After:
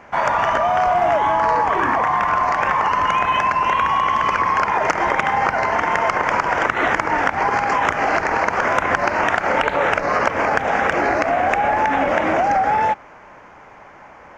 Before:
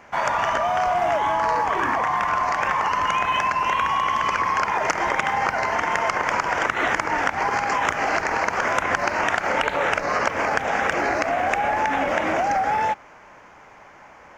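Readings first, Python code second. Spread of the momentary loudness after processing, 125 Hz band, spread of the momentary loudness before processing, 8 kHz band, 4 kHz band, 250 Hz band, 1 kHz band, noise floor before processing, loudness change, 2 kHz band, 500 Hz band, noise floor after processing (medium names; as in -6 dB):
2 LU, +5.0 dB, 1 LU, -2.5 dB, +0.5 dB, +5.0 dB, +4.5 dB, -47 dBFS, +4.0 dB, +3.0 dB, +4.5 dB, -43 dBFS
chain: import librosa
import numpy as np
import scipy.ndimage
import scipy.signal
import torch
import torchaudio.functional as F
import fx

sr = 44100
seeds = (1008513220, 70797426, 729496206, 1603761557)

y = fx.high_shelf(x, sr, hz=3200.0, db=-9.0)
y = y * 10.0 ** (5.0 / 20.0)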